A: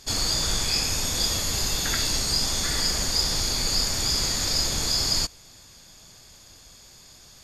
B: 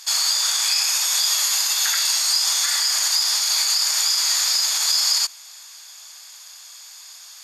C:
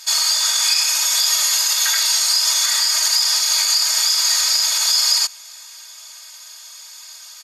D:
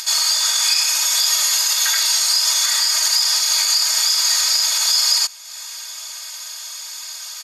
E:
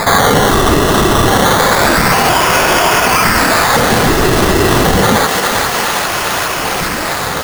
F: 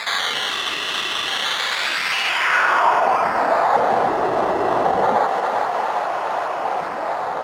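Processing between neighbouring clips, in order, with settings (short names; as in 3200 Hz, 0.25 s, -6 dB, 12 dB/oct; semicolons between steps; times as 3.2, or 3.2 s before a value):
limiter -17.5 dBFS, peak gain reduction 7.5 dB; HPF 880 Hz 24 dB/oct; high shelf 6000 Hz +5 dB; gain +6.5 dB
comb 3.2 ms, depth 99%
upward compressor, threshold -23 dBFS
decimation with a swept rate 15×, swing 60% 0.28 Hz; thinning echo 0.405 s, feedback 75%, high-pass 650 Hz, level -7 dB; maximiser +15 dB; gain -1 dB
band-pass sweep 2900 Hz -> 740 Hz, 2.2–3.04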